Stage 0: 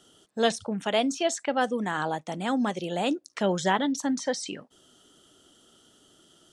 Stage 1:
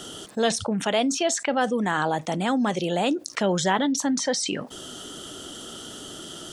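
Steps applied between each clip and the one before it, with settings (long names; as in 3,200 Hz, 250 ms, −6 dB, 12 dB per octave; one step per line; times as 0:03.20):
envelope flattener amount 50%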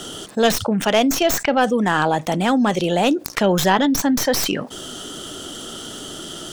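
stylus tracing distortion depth 0.13 ms
level +6 dB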